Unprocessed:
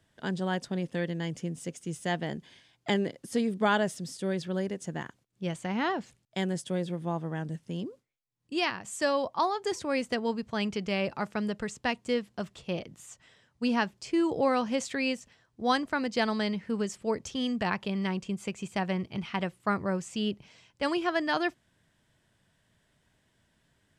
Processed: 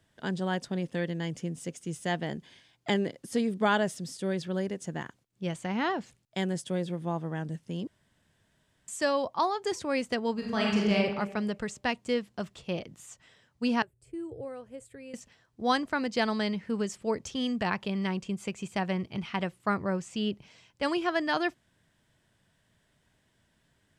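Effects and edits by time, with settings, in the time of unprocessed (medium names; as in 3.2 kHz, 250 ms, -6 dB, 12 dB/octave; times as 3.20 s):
7.87–8.88 s: room tone
10.33–10.95 s: reverb throw, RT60 1.1 s, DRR -3 dB
13.82–15.14 s: FFT filter 130 Hz 0 dB, 190 Hz -29 dB, 290 Hz -13 dB, 460 Hz -9 dB, 920 Hz -24 dB, 1.5 kHz -19 dB, 5.9 kHz -29 dB, 8.4 kHz -9 dB
19.75–20.33 s: treble shelf 8.4 kHz -7 dB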